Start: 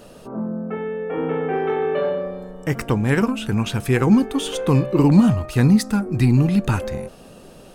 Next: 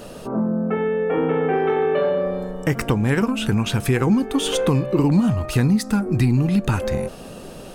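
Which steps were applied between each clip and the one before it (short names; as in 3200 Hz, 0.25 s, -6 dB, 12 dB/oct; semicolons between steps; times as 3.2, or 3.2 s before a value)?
compressor 3:1, threshold -24 dBFS, peak gain reduction 12 dB; gain +6.5 dB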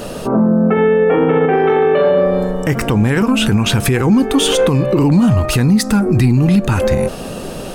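maximiser +15 dB; gain -4 dB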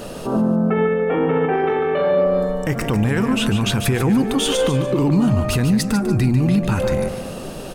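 feedback echo 0.146 s, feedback 38%, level -9 dB; gain -5.5 dB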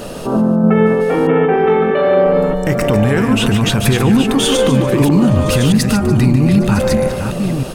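reverse delay 0.636 s, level -6 dB; gain +4.5 dB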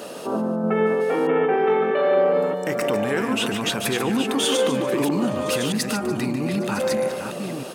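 HPF 290 Hz 12 dB/oct; gain -6 dB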